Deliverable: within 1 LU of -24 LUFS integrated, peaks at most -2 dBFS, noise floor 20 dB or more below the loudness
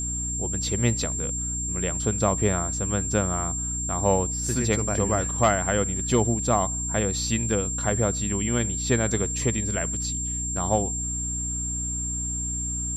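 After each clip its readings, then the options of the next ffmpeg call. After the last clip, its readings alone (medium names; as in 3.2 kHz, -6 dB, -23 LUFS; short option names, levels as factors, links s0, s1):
hum 60 Hz; highest harmonic 300 Hz; hum level -30 dBFS; steady tone 7.4 kHz; tone level -28 dBFS; loudness -24.5 LUFS; peak level -8.0 dBFS; loudness target -24.0 LUFS
-> -af "bandreject=f=60:t=h:w=4,bandreject=f=120:t=h:w=4,bandreject=f=180:t=h:w=4,bandreject=f=240:t=h:w=4,bandreject=f=300:t=h:w=4"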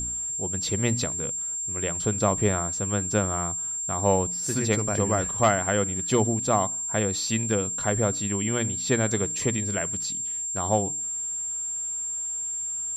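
hum not found; steady tone 7.4 kHz; tone level -28 dBFS
-> -af "bandreject=f=7400:w=30"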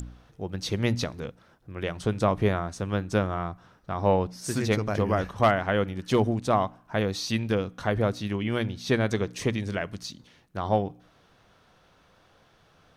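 steady tone not found; loudness -27.5 LUFS; peak level -9.5 dBFS; loudness target -24.0 LUFS
-> -af "volume=1.5"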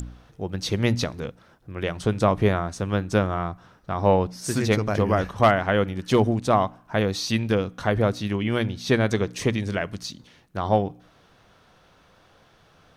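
loudness -24.0 LUFS; peak level -6.0 dBFS; noise floor -58 dBFS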